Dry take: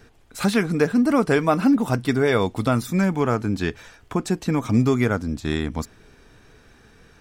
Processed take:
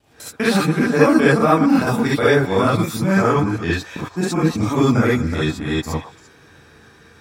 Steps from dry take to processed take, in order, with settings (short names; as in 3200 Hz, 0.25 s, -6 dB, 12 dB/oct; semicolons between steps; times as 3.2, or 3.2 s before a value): local time reversal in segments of 0.198 s; HPF 88 Hz; delay with a stepping band-pass 0.114 s, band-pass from 900 Hz, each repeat 1.4 oct, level -9 dB; non-linear reverb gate 90 ms rising, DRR -7.5 dB; gain -2.5 dB